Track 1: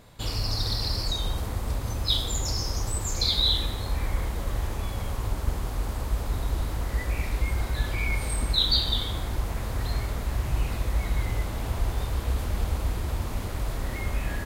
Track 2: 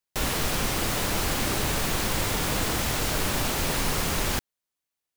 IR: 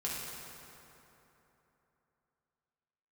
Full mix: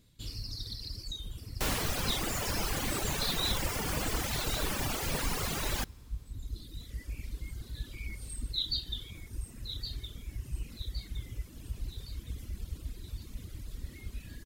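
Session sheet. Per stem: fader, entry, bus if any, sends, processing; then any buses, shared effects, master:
−10.0 dB, 0.00 s, no send, echo send −8.5 dB, drawn EQ curve 310 Hz 0 dB, 780 Hz −18 dB, 3,600 Hz +1 dB
−4.0 dB, 1.45 s, send −21.5 dB, no echo send, no processing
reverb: on, RT60 3.3 s, pre-delay 3 ms
echo: repeating echo 1,115 ms, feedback 48%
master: reverb reduction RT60 1.9 s

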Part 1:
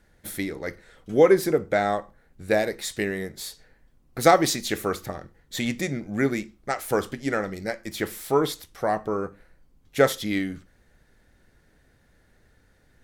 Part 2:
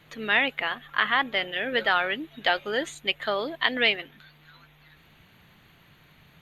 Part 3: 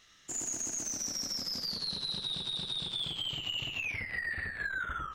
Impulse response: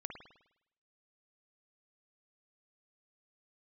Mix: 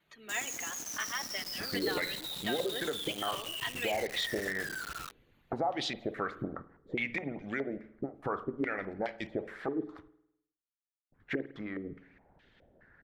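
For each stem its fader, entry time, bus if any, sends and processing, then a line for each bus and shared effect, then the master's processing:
−0.5 dB, 1.35 s, muted 0:10.08–0:11.12, bus A, send −12.5 dB, downward compressor 16 to 1, threshold −27 dBFS, peak gain reduction 17 dB; low-pass on a step sequencer 4.8 Hz 320–3,200 Hz
−8.5 dB, 0.00 s, bus A, send −13 dB, barber-pole flanger 2.8 ms +0.87 Hz
−11.0 dB, 0.00 s, no bus, no send, soft clipping −36 dBFS, distortion −11 dB; log-companded quantiser 2 bits
bus A: 0.0 dB, harmonic and percussive parts rebalanced harmonic −17 dB; brickwall limiter −25.5 dBFS, peak gain reduction 11.5 dB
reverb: on, RT60 0.80 s, pre-delay 51 ms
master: low-shelf EQ 87 Hz −6.5 dB

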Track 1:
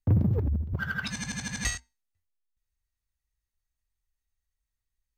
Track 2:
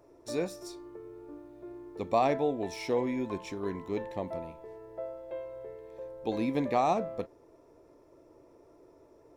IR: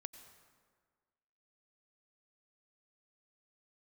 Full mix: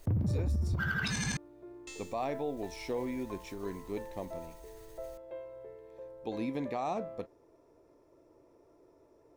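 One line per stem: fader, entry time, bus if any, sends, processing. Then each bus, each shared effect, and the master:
−3.0 dB, 0.00 s, muted 0:01.37–0:01.87, no send, hum removal 263.4 Hz, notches 40; envelope flattener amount 50%
−4.5 dB, 0.00 s, no send, no processing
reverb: not used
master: brickwall limiter −25 dBFS, peak gain reduction 9 dB

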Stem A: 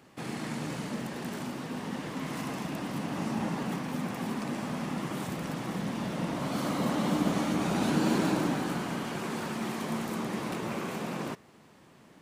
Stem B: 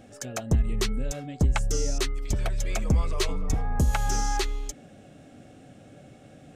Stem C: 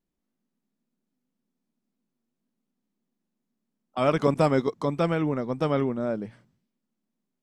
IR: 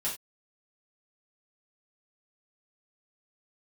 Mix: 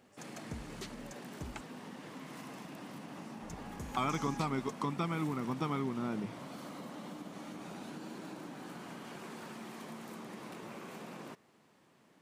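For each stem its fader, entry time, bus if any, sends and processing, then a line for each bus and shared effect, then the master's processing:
−8.5 dB, 0.00 s, no send, downward compressor, threshold −33 dBFS, peak gain reduction 11 dB
−17.0 dB, 0.00 s, muted 0:01.61–0:03.43, no send, no processing
−1.0 dB, 0.00 s, no send, comb filter 0.9 ms, depth 86%; downward compressor 4 to 1, threshold −30 dBFS, peak gain reduction 12.5 dB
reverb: not used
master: high-pass filter 160 Hz 6 dB per octave

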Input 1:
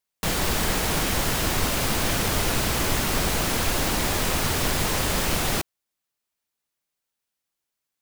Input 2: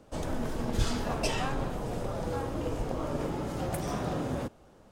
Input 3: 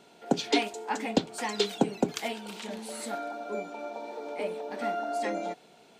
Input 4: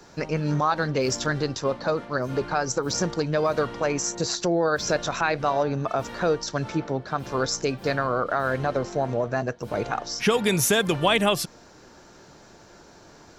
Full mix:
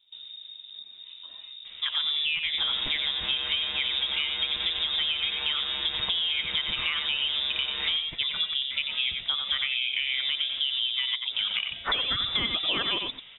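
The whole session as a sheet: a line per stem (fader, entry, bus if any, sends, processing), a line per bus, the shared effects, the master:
−5.5 dB, 2.35 s, no send, echo send −13.5 dB, phases set to zero 140 Hz
−15.5 dB, 0.00 s, no send, no echo send, low shelf with overshoot 180 Hz +10 dB, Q 1.5; downward compressor 12 to 1, threshold −27 dBFS, peak gain reduction 17 dB
−19.5 dB, 2.15 s, no send, no echo send, no processing
+1.5 dB, 1.65 s, no send, echo send −7.5 dB, no processing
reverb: not used
echo: single-tap delay 91 ms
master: voice inversion scrambler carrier 3,700 Hz; downward compressor 10 to 1, threshold −24 dBFS, peak gain reduction 10.5 dB

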